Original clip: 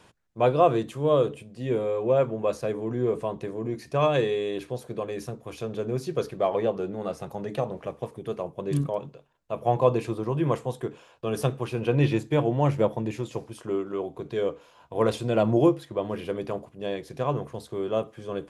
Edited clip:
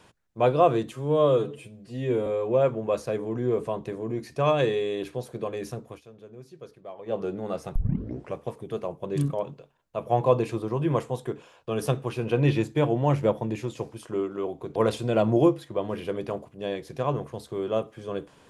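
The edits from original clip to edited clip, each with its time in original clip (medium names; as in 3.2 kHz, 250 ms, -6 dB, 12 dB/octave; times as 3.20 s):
0.93–1.82 s: stretch 1.5×
5.44–6.73 s: dip -16.5 dB, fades 0.12 s
7.31 s: tape start 0.59 s
14.31–14.96 s: delete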